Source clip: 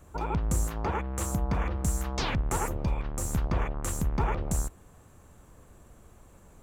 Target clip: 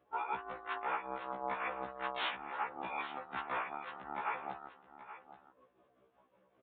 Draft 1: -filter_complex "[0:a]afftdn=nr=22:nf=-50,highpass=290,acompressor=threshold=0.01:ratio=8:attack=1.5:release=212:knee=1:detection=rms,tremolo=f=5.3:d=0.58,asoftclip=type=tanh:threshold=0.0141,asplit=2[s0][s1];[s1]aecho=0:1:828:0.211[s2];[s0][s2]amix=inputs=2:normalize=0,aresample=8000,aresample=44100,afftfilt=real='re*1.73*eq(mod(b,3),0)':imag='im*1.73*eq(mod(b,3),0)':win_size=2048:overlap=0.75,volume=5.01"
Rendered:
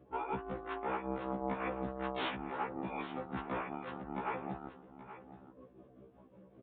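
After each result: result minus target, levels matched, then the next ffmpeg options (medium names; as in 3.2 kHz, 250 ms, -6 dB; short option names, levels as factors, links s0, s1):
saturation: distortion +20 dB; 250 Hz band +11.5 dB
-filter_complex "[0:a]afftdn=nr=22:nf=-50,highpass=290,acompressor=threshold=0.01:ratio=8:attack=1.5:release=212:knee=1:detection=rms,tremolo=f=5.3:d=0.58,asoftclip=type=tanh:threshold=0.0501,asplit=2[s0][s1];[s1]aecho=0:1:828:0.211[s2];[s0][s2]amix=inputs=2:normalize=0,aresample=8000,aresample=44100,afftfilt=real='re*1.73*eq(mod(b,3),0)':imag='im*1.73*eq(mod(b,3),0)':win_size=2048:overlap=0.75,volume=5.01"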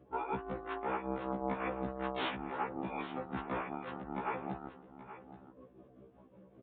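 250 Hz band +11.5 dB
-filter_complex "[0:a]afftdn=nr=22:nf=-50,highpass=900,acompressor=threshold=0.01:ratio=8:attack=1.5:release=212:knee=1:detection=rms,tremolo=f=5.3:d=0.58,asoftclip=type=tanh:threshold=0.0501,asplit=2[s0][s1];[s1]aecho=0:1:828:0.211[s2];[s0][s2]amix=inputs=2:normalize=0,aresample=8000,aresample=44100,afftfilt=real='re*1.73*eq(mod(b,3),0)':imag='im*1.73*eq(mod(b,3),0)':win_size=2048:overlap=0.75,volume=5.01"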